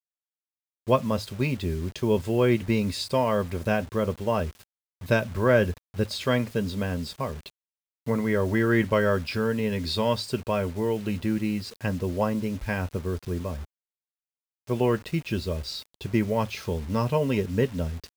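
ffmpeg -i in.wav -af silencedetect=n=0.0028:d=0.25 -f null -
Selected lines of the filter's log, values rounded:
silence_start: 0.00
silence_end: 0.87 | silence_duration: 0.87
silence_start: 4.64
silence_end: 5.01 | silence_duration: 0.38
silence_start: 7.50
silence_end: 8.06 | silence_duration: 0.57
silence_start: 13.65
silence_end: 14.67 | silence_duration: 1.02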